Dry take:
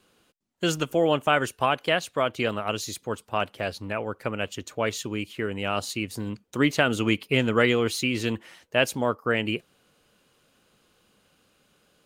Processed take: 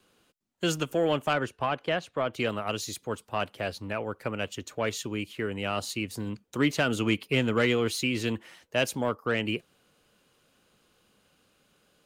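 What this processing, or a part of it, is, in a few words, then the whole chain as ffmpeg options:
one-band saturation: -filter_complex "[0:a]acrossover=split=280|3100[s0][s1][s2];[s1]asoftclip=type=tanh:threshold=0.141[s3];[s0][s3][s2]amix=inputs=3:normalize=0,asettb=1/sr,asplit=3[s4][s5][s6];[s4]atrim=end=1.334[s7];[s5]atrim=start=1.33:end=2.33,asetpts=PTS-STARTPTS,afade=t=in:d=0.004:c=qsin,afade=t=out:st=0.996:d=0.004:c=qsin,aemphasis=mode=reproduction:type=75kf[s8];[s6]atrim=start=2.326[s9];[s7][s8]acrossfade=d=0.004:c1=hsin:c2=qsin[s10];[s10][s9]acrossfade=d=0.004:c1=qsin:c2=hsin,volume=0.794"

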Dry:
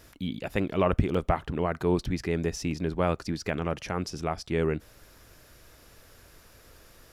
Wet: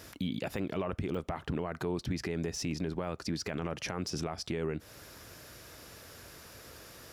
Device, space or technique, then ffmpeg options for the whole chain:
broadcast voice chain: -af "highpass=79,deesser=0.8,acompressor=threshold=0.0224:ratio=4,equalizer=f=5200:t=o:w=0.77:g=2,alimiter=level_in=1.58:limit=0.0631:level=0:latency=1:release=21,volume=0.631,volume=1.68"

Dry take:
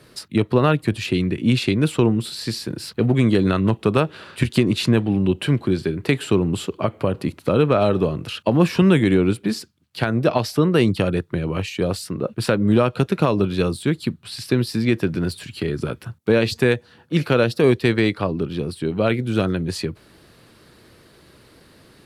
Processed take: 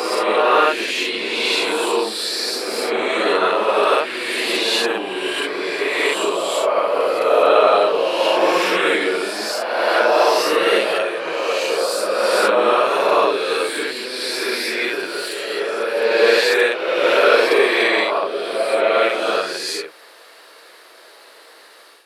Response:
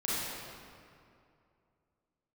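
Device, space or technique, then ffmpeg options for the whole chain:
ghost voice: -filter_complex "[0:a]areverse[s0];[1:a]atrim=start_sample=2205[s1];[s0][s1]afir=irnorm=-1:irlink=0,areverse,highpass=f=530:w=0.5412,highpass=f=530:w=1.3066,volume=1.33"

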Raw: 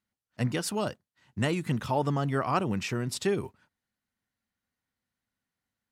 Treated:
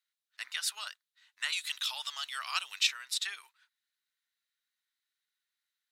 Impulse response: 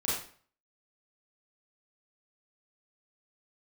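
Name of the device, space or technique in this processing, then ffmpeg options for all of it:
headphones lying on a table: -filter_complex "[0:a]highpass=f=1400:w=0.5412,highpass=f=1400:w=1.3066,equalizer=f=3800:t=o:w=0.29:g=9.5,asettb=1/sr,asplit=3[s0][s1][s2];[s0]atrim=end=1.524[s3];[s1]atrim=start=1.52:end=2.87,asetpts=PTS-STARTPTS,afade=t=in:d=0.004:c=qsin,afade=t=out:st=1.346:d=0.004:c=qsin,highshelf=f=2400:t=q:w=1.5:g=7.5[s4];[s2]atrim=start=2.866[s5];[s3][s4]acrossfade=d=0.004:c1=hsin:c2=qsin[s6];[s6][s5]acrossfade=d=0.004:c1=qsin:c2=hsin"

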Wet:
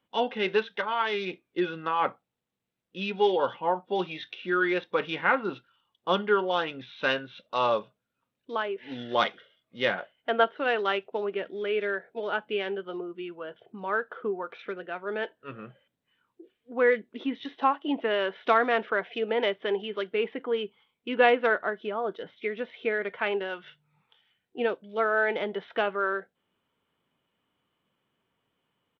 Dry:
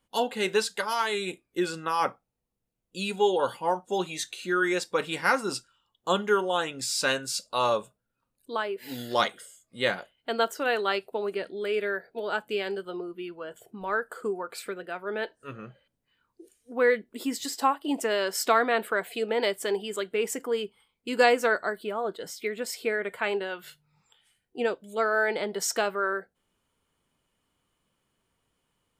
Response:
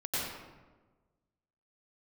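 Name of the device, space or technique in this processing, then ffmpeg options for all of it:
Bluetooth headset: -filter_complex "[0:a]asettb=1/sr,asplit=3[s0][s1][s2];[s0]atrim=end=9.934[s3];[s1]atrim=start=9.93:end=10.44,asetpts=PTS-STARTPTS,afade=t=in:d=0.004:c=qsin,afade=t=out:st=0.506:d=0.004:c=qsin,equalizer=f=630:t=o:w=0.67:g=5,equalizer=f=1600:t=o:w=0.67:g=5,equalizer=f=6300:t=o:w=0.67:g=-10[s4];[s2]atrim=start=10.436[s5];[s3][s4]acrossfade=d=0.004:c1=hsin:c2=qsin[s6];[s6][s5]acrossfade=d=0.004:c1=qsin:c2=hsin,highpass=120,aresample=8000,aresample=44100" -ar 32000 -c:a sbc -b:a 64k

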